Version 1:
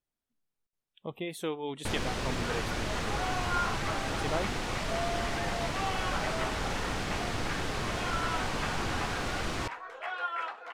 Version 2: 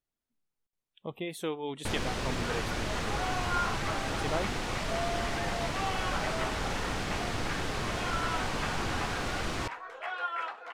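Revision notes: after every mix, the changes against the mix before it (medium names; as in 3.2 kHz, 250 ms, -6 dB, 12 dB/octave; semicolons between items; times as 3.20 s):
no change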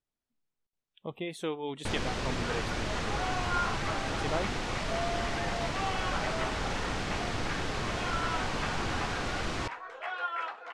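master: add low-pass 8.3 kHz 12 dB/octave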